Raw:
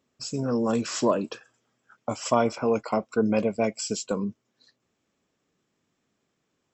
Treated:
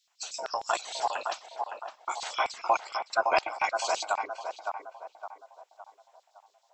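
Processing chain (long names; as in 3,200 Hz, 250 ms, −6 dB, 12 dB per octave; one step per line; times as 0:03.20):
gate on every frequency bin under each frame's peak −15 dB weak
auto-filter high-pass square 6.5 Hz 720–4,100 Hz
0:02.58–0:03.60: transient designer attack +3 dB, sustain −6 dB
feedback echo with a band-pass in the loop 562 ms, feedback 45%, band-pass 760 Hz, level −4 dB
level +6.5 dB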